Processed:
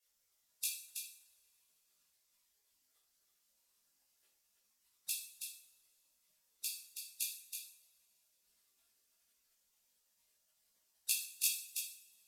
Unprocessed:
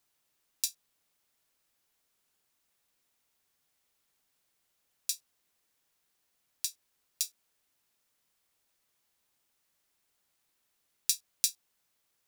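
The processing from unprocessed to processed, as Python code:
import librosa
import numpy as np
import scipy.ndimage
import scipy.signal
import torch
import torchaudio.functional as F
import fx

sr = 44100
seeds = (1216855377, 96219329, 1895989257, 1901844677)

y = fx.envelope_sharpen(x, sr, power=2.0)
y = scipy.signal.sosfilt(scipy.signal.bessel(4, 9800.0, 'lowpass', norm='mag', fs=sr, output='sos'), y)
y = fx.peak_eq(y, sr, hz=6400.0, db=-13.5, octaves=0.76)
y = fx.spec_gate(y, sr, threshold_db=-15, keep='weak')
y = fx.chorus_voices(y, sr, voices=6, hz=0.66, base_ms=17, depth_ms=2.4, mix_pct=50)
y = y + 10.0 ** (-6.5 / 20.0) * np.pad(y, (int(325 * sr / 1000.0), 0))[:len(y)]
y = fx.rev_double_slope(y, sr, seeds[0], early_s=0.55, late_s=3.0, knee_db=-26, drr_db=0.0)
y = y * 10.0 ** (16.5 / 20.0)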